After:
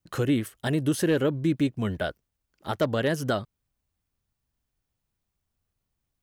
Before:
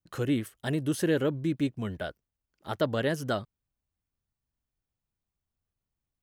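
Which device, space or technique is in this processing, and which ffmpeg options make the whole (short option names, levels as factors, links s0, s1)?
clipper into limiter: -af "asoftclip=type=hard:threshold=0.126,alimiter=limit=0.0841:level=0:latency=1:release=250,volume=2"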